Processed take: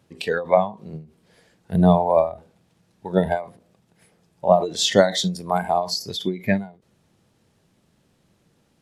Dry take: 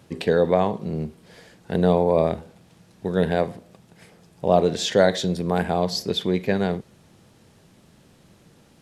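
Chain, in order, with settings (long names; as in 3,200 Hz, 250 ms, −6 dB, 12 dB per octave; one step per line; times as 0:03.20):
0:02.31–0:03.37: dynamic equaliser 690 Hz, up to +4 dB, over −36 dBFS, Q 0.83
noise reduction from a noise print of the clip's start 15 dB
every ending faded ahead of time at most 160 dB per second
level +6 dB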